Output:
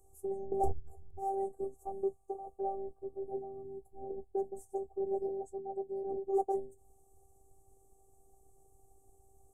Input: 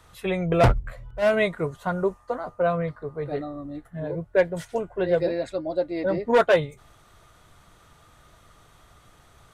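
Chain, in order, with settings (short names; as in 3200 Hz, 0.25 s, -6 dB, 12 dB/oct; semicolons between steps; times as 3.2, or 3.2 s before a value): elliptic band-stop 690–7600 Hz, stop band 40 dB; in parallel at -1.5 dB: compressor, threshold -37 dBFS, peak gain reduction 21 dB; on the sum: robotiser 389 Hz; gain -9 dB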